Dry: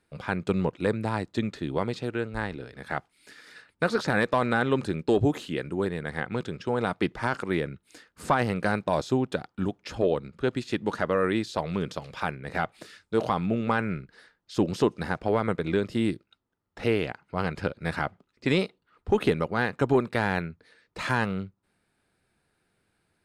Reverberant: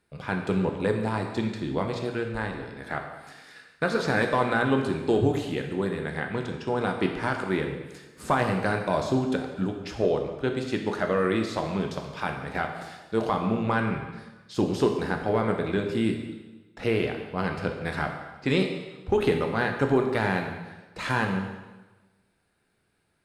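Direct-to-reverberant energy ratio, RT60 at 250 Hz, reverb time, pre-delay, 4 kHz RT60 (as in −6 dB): 3.0 dB, 1.2 s, 1.2 s, 7 ms, 1.1 s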